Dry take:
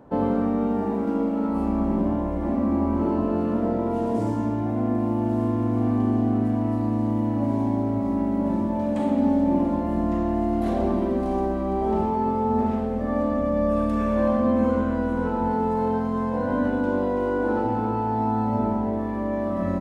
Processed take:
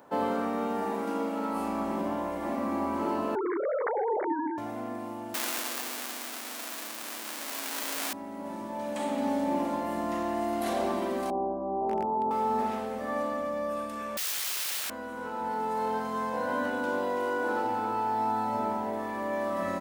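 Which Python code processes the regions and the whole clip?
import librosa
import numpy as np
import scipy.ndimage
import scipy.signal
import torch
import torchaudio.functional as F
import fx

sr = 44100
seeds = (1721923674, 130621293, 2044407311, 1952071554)

y = fx.chain(x, sr, fx.sine_speech(),
    fx.brickwall_lowpass(high_hz=2300.0), at=(3.35, 4.58))
y = fx.chain(y, sr, fx.clip_1bit(),
    fx.highpass(hz=220.0, slope=24), at=(5.34, 8.13))
y = fx.chain(y, sr, fx.steep_lowpass(hz=950.0, slope=36),
    fx.clip_hard(threshold_db=-15.0), at=(11.3, 12.31))
y = fx.chain(y, sr, fx.savgol(points=65),
    fx.overflow_wrap(gain_db=28.0), at=(14.17, 14.9))
y = np.diff(y, prepend=0.0)
y = fx.rider(y, sr, range_db=10, speed_s=2.0)
y = fx.high_shelf(y, sr, hz=2400.0, db=-9.0)
y = y * librosa.db_to_amplitude(9.0)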